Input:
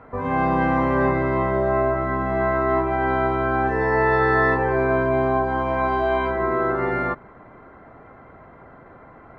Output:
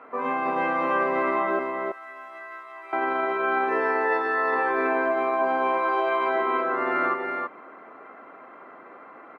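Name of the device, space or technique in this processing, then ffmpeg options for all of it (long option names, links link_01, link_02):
laptop speaker: -filter_complex "[0:a]highpass=frequency=260:width=0.5412,highpass=frequency=260:width=1.3066,equalizer=frequency=1200:width_type=o:width=0.33:gain=7,equalizer=frequency=2600:width_type=o:width=0.52:gain=8,alimiter=limit=-15dB:level=0:latency=1:release=31,asettb=1/sr,asplit=3[link_01][link_02][link_03];[link_01]atrim=end=1.594[link_04];[link_02]atrim=start=1.59:end=2.93,asetpts=PTS-STARTPTS,afade=type=in:duration=0.004:curve=qsin,afade=type=out:start_time=1.336:duration=0.004:curve=qsin,aderivative[link_05];[link_03]atrim=start=2.926[link_06];[link_04][link_05]acrossfade=duration=0.004:curve1=hsin:curve2=qsin[link_07];[link_07][link_06]acrossfade=duration=0.004:curve1=qsin:curve2=hsin,aecho=1:1:327:0.596,volume=-2dB"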